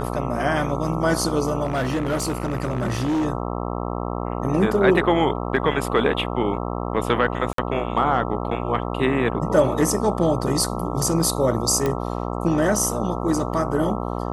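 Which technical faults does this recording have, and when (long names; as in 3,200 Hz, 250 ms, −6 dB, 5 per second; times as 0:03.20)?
mains buzz 60 Hz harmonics 22 −27 dBFS
0:01.64–0:03.26: clipping −19 dBFS
0:07.53–0:07.58: drop-out 53 ms
0:11.86: click −10 dBFS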